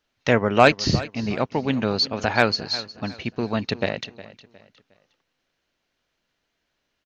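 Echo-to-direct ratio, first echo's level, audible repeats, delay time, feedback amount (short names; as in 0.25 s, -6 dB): -16.5 dB, -17.0 dB, 2, 0.36 s, 33%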